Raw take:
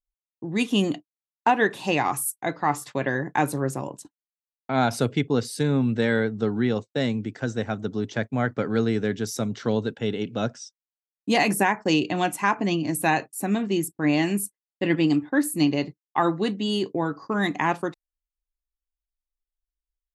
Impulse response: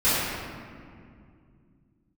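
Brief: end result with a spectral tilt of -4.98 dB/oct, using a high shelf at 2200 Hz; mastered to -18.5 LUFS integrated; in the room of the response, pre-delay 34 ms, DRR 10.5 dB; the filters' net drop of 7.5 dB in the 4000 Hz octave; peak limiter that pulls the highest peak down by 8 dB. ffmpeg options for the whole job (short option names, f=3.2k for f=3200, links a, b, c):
-filter_complex "[0:a]highshelf=f=2.2k:g=-4.5,equalizer=f=4k:t=o:g=-6.5,alimiter=limit=-17dB:level=0:latency=1,asplit=2[a][b];[1:a]atrim=start_sample=2205,adelay=34[c];[b][c]afir=irnorm=-1:irlink=0,volume=-28dB[d];[a][d]amix=inputs=2:normalize=0,volume=9.5dB"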